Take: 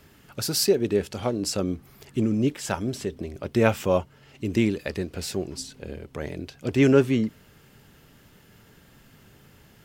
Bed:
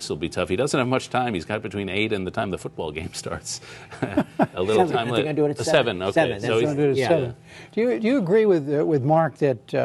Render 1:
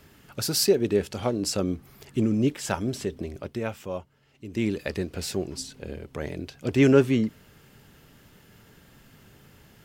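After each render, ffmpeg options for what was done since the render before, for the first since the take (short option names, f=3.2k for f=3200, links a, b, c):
-filter_complex "[0:a]asplit=3[a][b][c];[a]atrim=end=3.6,asetpts=PTS-STARTPTS,afade=t=out:st=3.34:d=0.26:silence=0.281838[d];[b]atrim=start=3.6:end=4.51,asetpts=PTS-STARTPTS,volume=-11dB[e];[c]atrim=start=4.51,asetpts=PTS-STARTPTS,afade=t=in:d=0.26:silence=0.281838[f];[d][e][f]concat=n=3:v=0:a=1"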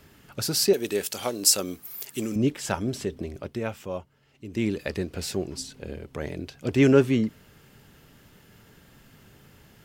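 -filter_complex "[0:a]asettb=1/sr,asplit=3[a][b][c];[a]atrim=end=0.734[d];[b]atrim=start=0.73:end=2.36,asetpts=PTS-STARTPTS,afade=t=in:d=0.004:c=qsin,afade=t=out:st=1.626:d=0.004:c=qsin,aemphasis=mode=production:type=riaa[e];[c]atrim=start=2.356[f];[d][e]acrossfade=d=0.004:c1=hsin:c2=qsin[g];[g][f]acrossfade=d=0.004:c1=qsin:c2=hsin"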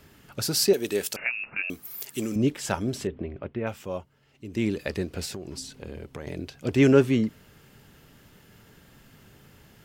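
-filter_complex "[0:a]asettb=1/sr,asplit=3[a][b][c];[a]atrim=end=1.164[d];[b]atrim=start=1.16:end=1.7,asetpts=PTS-STARTPTS,afade=t=in:d=0.004:c=qsin,afade=t=out:st=0.536:d=0.004:c=qsin,lowpass=f=2.5k:t=q:w=0.5098,lowpass=f=2.5k:t=q:w=0.6013,lowpass=f=2.5k:t=q:w=0.9,lowpass=f=2.5k:t=q:w=2.563,afreqshift=-2900[e];[c]atrim=start=1.696[f];[d][e]acrossfade=d=0.004:c1=hsin:c2=qsin[g];[g][f]acrossfade=d=0.004:c1=qsin:c2=hsin,asettb=1/sr,asplit=3[h][i][j];[h]atrim=end=3.074[k];[i]atrim=start=3.07:end=3.67,asetpts=PTS-STARTPTS,afade=t=in:d=0.004:c=qsin,afade=t=out:st=0.596:d=0.004:c=qsin,lowpass=f=2.8k:w=0.5412,lowpass=f=2.8k:w=1.3066[l];[j]atrim=start=3.666[m];[k][l]acrossfade=d=0.004:c1=hsin:c2=qsin[n];[n][m]acrossfade=d=0.004:c1=qsin:c2=hsin,asettb=1/sr,asplit=3[o][p][q];[o]atrim=end=5.254[r];[p]atrim=start=5.25:end=6.27,asetpts=PTS-STARTPTS,afade=t=in:d=0.004:c=qsin,afade=t=out:st=1.016:d=0.004:c=qsin,acompressor=threshold=-31dB:ratio=12:attack=3.2:release=140:knee=1:detection=peak[s];[q]atrim=start=6.266[t];[r][s]acrossfade=d=0.004:c1=hsin:c2=qsin[u];[u][t]acrossfade=d=0.004:c1=qsin:c2=hsin"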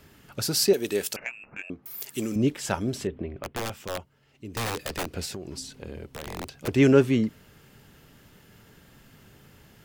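-filter_complex "[0:a]asettb=1/sr,asplit=3[a][b][c];[a]atrim=end=1.194[d];[b]atrim=start=1.19:end=1.86,asetpts=PTS-STARTPTS,afade=t=in:d=0.004:c=qsin,afade=t=out:st=0.666:d=0.004:c=qsin,adynamicsmooth=sensitivity=0.5:basefreq=1.2k[e];[c]atrim=start=1.856[f];[d][e]acrossfade=d=0.004:c1=hsin:c2=qsin[g];[g][f]acrossfade=d=0.004:c1=qsin:c2=hsin,asettb=1/sr,asplit=3[h][i][j];[h]atrim=end=3.424[k];[i]atrim=start=3.42:end=5.11,asetpts=PTS-STARTPTS,afade=t=in:d=0.004:c=qsin,afade=t=out:st=1.686:d=0.004:c=qsin,aeval=exprs='(mod(15.8*val(0)+1,2)-1)/15.8':c=same[l];[j]atrim=start=5.106[m];[k][l]acrossfade=d=0.004:c1=hsin:c2=qsin[n];[n][m]acrossfade=d=0.004:c1=qsin:c2=hsin,asettb=1/sr,asplit=3[o][p][q];[o]atrim=end=6.094[r];[p]atrim=start=6.09:end=6.68,asetpts=PTS-STARTPTS,afade=t=in:d=0.004:c=qsin,afade=t=out:st=0.586:d=0.004:c=qsin,aeval=exprs='(mod(21.1*val(0)+1,2)-1)/21.1':c=same[s];[q]atrim=start=6.676[t];[r][s]acrossfade=d=0.004:c1=hsin:c2=qsin[u];[u][t]acrossfade=d=0.004:c1=qsin:c2=hsin"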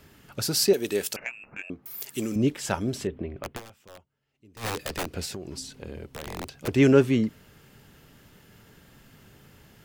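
-filter_complex "[0:a]asplit=3[a][b][c];[a]atrim=end=3.78,asetpts=PTS-STARTPTS,afade=t=out:st=3.56:d=0.22:c=exp:silence=0.16788[d];[b]atrim=start=3.78:end=4.43,asetpts=PTS-STARTPTS,volume=-15.5dB[e];[c]atrim=start=4.43,asetpts=PTS-STARTPTS,afade=t=in:d=0.22:c=exp:silence=0.16788[f];[d][e][f]concat=n=3:v=0:a=1"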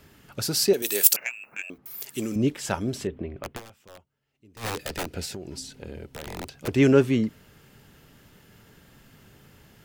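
-filter_complex "[0:a]asettb=1/sr,asplit=3[a][b][c];[a]atrim=end=0.824[d];[b]atrim=start=0.82:end=1.78,asetpts=PTS-STARTPTS,afade=t=in:d=0.004:c=qsin,afade=t=out:st=0.956:d=0.004:c=qsin,aemphasis=mode=production:type=riaa[e];[c]atrim=start=1.776[f];[d][e]acrossfade=d=0.004:c1=hsin:c2=qsin[g];[g][f]acrossfade=d=0.004:c1=qsin:c2=hsin,asettb=1/sr,asplit=3[h][i][j];[h]atrim=end=4.814[k];[i]atrim=start=4.81:end=6.5,asetpts=PTS-STARTPTS,afade=t=in:d=0.004:c=qsin,afade=t=out:st=1.686:d=0.004:c=qsin,asuperstop=centerf=1100:order=4:qfactor=7.2[l];[j]atrim=start=6.496[m];[k][l]acrossfade=d=0.004:c1=hsin:c2=qsin[n];[n][m]acrossfade=d=0.004:c1=qsin:c2=hsin"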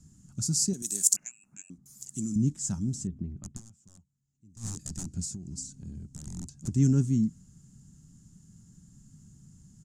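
-af "firequalizer=gain_entry='entry(110,0);entry(170,5);entry(480,-29);entry(730,-22);entry(1200,-21);entry(2300,-28);entry(3500,-21);entry(6900,7);entry(15000,-29)':delay=0.05:min_phase=1"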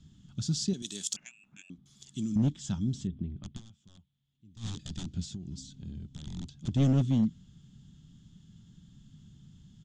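-af "lowpass=f=3.4k:t=q:w=9.9,aeval=exprs='clip(val(0),-1,0.1)':c=same"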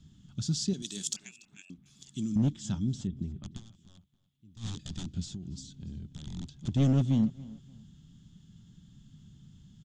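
-filter_complex "[0:a]asplit=2[a][b];[b]adelay=288,lowpass=f=5k:p=1,volume=-20dB,asplit=2[c][d];[d]adelay=288,lowpass=f=5k:p=1,volume=0.31[e];[a][c][e]amix=inputs=3:normalize=0"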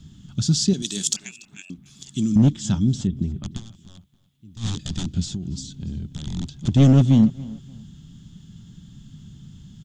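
-af "volume=11dB"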